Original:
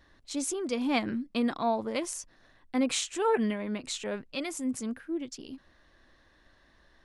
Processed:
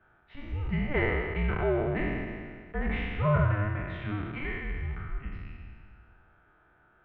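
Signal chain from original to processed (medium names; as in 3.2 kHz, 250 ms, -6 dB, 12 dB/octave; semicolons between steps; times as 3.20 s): spectral sustain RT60 1.95 s; comb of notches 280 Hz; mistuned SSB -300 Hz 170–2600 Hz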